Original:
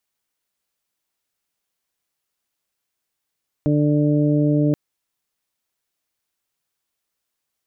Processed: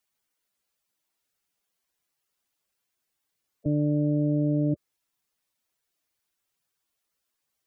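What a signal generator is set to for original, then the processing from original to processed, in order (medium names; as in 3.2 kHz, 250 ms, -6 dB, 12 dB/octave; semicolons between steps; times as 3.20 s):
steady additive tone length 1.08 s, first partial 148 Hz, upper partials 0.5/-9/-8 dB, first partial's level -18 dB
spectral gate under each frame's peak -10 dB strong; peak limiter -18.5 dBFS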